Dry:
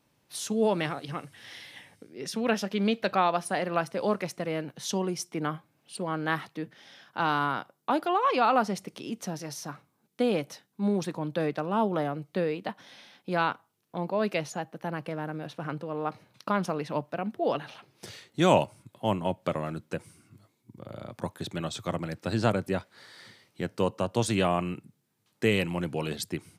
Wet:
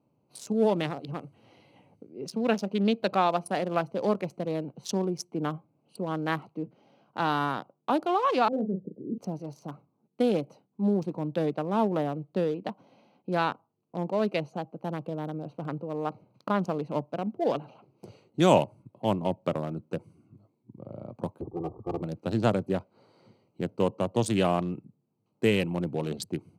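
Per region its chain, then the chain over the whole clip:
8.48–9.18 s: steep low-pass 500 Hz + doubling 37 ms -7 dB
21.41–22.02 s: comb filter that takes the minimum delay 2.5 ms + steep low-pass 1.2 kHz 72 dB/octave + bass shelf 170 Hz +4.5 dB
whole clip: local Wiener filter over 25 samples; high-pass 100 Hz; peaking EQ 1.7 kHz -4 dB 1.5 oct; trim +2 dB

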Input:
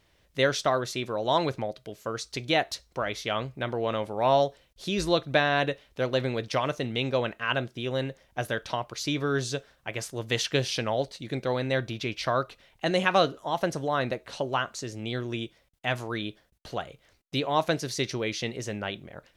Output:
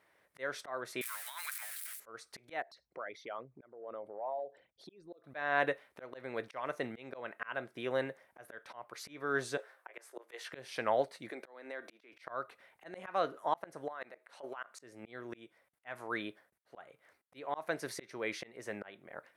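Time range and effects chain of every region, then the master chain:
1.01–2.00 s: zero-crossing glitches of -24.5 dBFS + high-pass 1.5 kHz 24 dB/octave + compressor with a negative ratio -37 dBFS
2.62–5.24 s: resonances exaggerated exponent 2 + compression 2:1, threshold -46 dBFS
9.57–10.53 s: Chebyshev high-pass 350 Hz, order 4 + doubling 17 ms -3 dB
11.30–12.13 s: high-pass 250 Hz 24 dB/octave + compression 8:1, threshold -34 dBFS
13.88–14.81 s: high-pass 510 Hz 6 dB/octave + compressor with a negative ratio -34 dBFS, ratio -0.5
whole clip: frequency weighting A; slow attack 348 ms; high-order bell 4.4 kHz -12.5 dB

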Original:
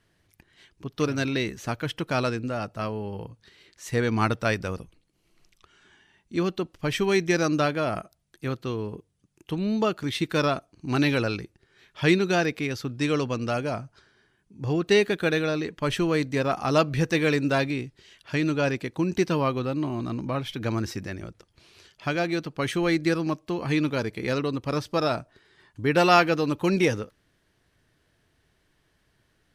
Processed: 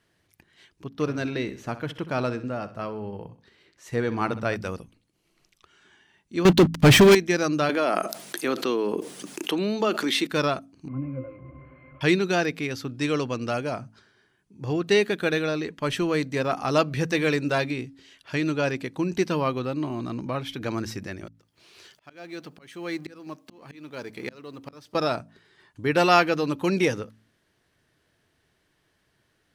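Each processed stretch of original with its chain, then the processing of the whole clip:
0.88–4.56 s: treble shelf 2.3 kHz -9 dB + feedback delay 64 ms, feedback 39%, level -14 dB
6.45–7.15 s: waveshaping leveller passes 5 + bass shelf 240 Hz +9 dB
7.69–10.27 s: high-pass 240 Hz 24 dB/octave + level flattener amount 70%
10.88–12.01 s: one-bit delta coder 16 kbps, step -26 dBFS + distance through air 380 m + pitch-class resonator C, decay 0.16 s
21.27–24.95 s: companding laws mixed up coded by mu + high-pass 170 Hz 6 dB/octave + slow attack 762 ms
whole clip: bass shelf 62 Hz -11.5 dB; de-hum 54.79 Hz, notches 5

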